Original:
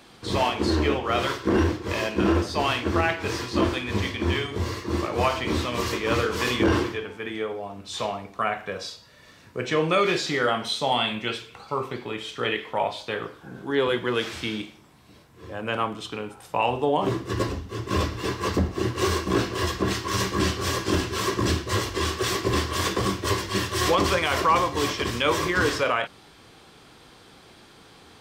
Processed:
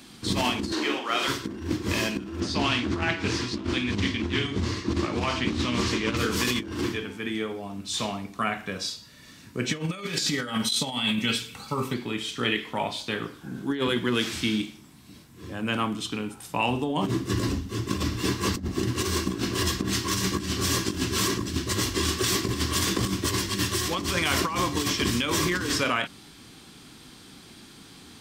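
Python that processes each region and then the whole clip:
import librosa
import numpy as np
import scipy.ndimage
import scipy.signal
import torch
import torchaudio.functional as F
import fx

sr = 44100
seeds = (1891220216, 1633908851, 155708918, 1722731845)

y = fx.chain(x, sr, fx.highpass(hz=490.0, slope=12),
    fx.high_shelf(hz=9600.0, db=-7.5),
    fx.doubler(ms=44.0, db=-6.5), at=(0.72, 1.28))
y = fx.chain(y, sr, fx.lowpass(hz=6000.0, slope=12),
    fx.doppler_dist(depth_ms=0.34), at=(2.4, 6.17))
y = fx.chain(y, sr, fx.high_shelf(hz=8000.0, db=7.5),
    fx.over_compress(threshold_db=-26.0, ratio=-0.5),
    fx.notch_comb(f0_hz=350.0), at=(9.69, 11.94))
y = fx.curve_eq(y, sr, hz=(100.0, 260.0, 500.0, 8700.0), db=(0, 6, -8, 6))
y = fx.over_compress(y, sr, threshold_db=-25.0, ratio=-0.5)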